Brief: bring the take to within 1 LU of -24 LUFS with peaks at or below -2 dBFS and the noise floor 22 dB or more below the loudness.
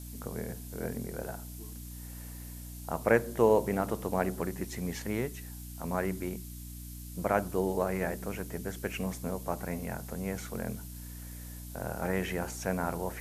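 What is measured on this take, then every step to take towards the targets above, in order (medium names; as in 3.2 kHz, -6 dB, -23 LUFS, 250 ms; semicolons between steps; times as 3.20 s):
hum 60 Hz; highest harmonic 300 Hz; hum level -42 dBFS; noise floor -44 dBFS; noise floor target -56 dBFS; loudness -34.0 LUFS; peak level -9.0 dBFS; loudness target -24.0 LUFS
-> de-hum 60 Hz, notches 5; noise reduction 12 dB, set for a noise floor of -44 dBFS; trim +10 dB; peak limiter -2 dBFS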